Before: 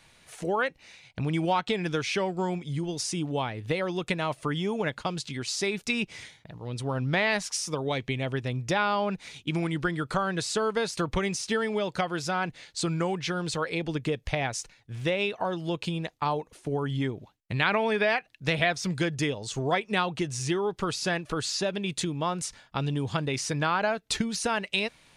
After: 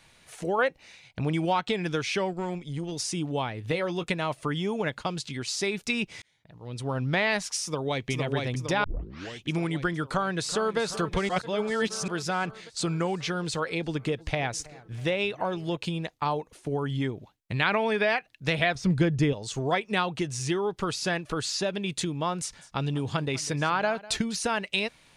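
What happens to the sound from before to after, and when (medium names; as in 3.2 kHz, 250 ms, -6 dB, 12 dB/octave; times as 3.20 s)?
0.58–1.33 s: dynamic bell 620 Hz, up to +6 dB, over -42 dBFS, Q 0.97
2.33–2.92 s: valve stage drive 24 dB, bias 0.6
3.62–4.06 s: doubling 18 ms -10.5 dB
6.22–6.90 s: fade in
7.64–8.09 s: echo throw 460 ms, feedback 60%, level -2.5 dB
8.84 s: tape start 0.57 s
10.06–10.79 s: echo throw 380 ms, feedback 75%, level -12.5 dB
11.29–12.08 s: reverse
13.68–15.77 s: bucket-brigade echo 324 ms, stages 4096, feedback 63%, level -20.5 dB
18.75–19.33 s: tilt EQ -2.5 dB/octave
22.39–24.35 s: delay 199 ms -19 dB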